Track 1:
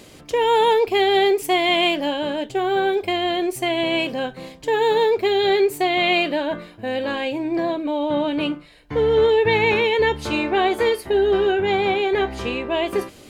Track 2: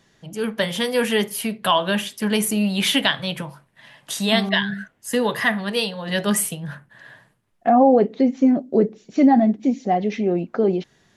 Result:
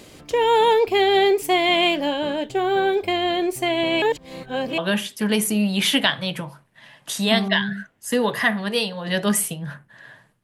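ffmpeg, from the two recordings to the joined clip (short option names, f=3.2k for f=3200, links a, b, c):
-filter_complex "[0:a]apad=whole_dur=10.43,atrim=end=10.43,asplit=2[a][b];[a]atrim=end=4.022[c];[b]atrim=start=4.018:end=4.782,asetpts=PTS-STARTPTS,areverse[d];[1:a]atrim=start=1.788:end=7.44[e];[c][d]acrossfade=d=0.004:c1=hsin:c2=hsin[f];[f][e]acrossfade=d=0.004:c1=hsin:c2=hsin"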